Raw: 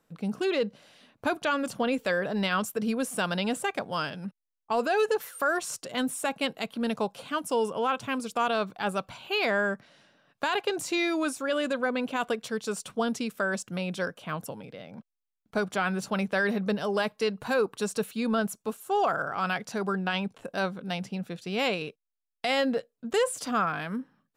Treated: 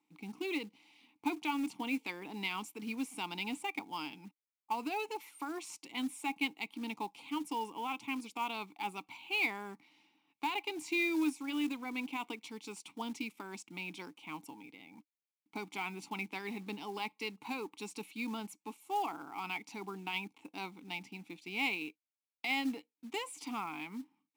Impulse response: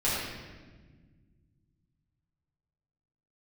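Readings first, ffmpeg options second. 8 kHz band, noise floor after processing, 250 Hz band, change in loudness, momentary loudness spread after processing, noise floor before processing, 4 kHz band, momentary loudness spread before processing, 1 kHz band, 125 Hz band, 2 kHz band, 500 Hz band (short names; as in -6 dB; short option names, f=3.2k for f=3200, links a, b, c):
-11.5 dB, under -85 dBFS, -8.0 dB, -9.5 dB, 12 LU, -85 dBFS, -7.5 dB, 8 LU, -9.0 dB, -16.0 dB, -8.0 dB, -17.5 dB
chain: -filter_complex "[0:a]crystalizer=i=9.5:c=0,asplit=3[a][b][c];[a]bandpass=f=300:t=q:w=8,volume=0dB[d];[b]bandpass=f=870:t=q:w=8,volume=-6dB[e];[c]bandpass=f=2.24k:t=q:w=8,volume=-9dB[f];[d][e][f]amix=inputs=3:normalize=0,acrusher=bits=5:mode=log:mix=0:aa=0.000001"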